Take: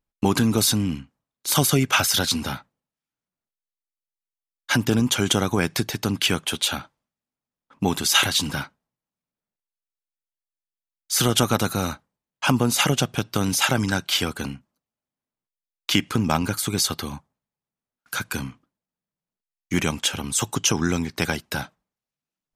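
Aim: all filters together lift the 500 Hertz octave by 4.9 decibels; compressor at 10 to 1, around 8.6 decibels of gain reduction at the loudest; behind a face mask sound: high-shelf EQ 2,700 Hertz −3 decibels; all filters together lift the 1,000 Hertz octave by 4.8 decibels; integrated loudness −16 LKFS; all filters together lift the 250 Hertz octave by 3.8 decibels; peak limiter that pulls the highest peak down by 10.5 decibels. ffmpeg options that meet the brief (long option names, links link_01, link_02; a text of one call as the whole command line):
ffmpeg -i in.wav -af "equalizer=frequency=250:width_type=o:gain=3.5,equalizer=frequency=500:width_type=o:gain=4,equalizer=frequency=1000:width_type=o:gain=5.5,acompressor=threshold=-20dB:ratio=10,alimiter=limit=-16dB:level=0:latency=1,highshelf=frequency=2700:gain=-3,volume=13dB" out.wav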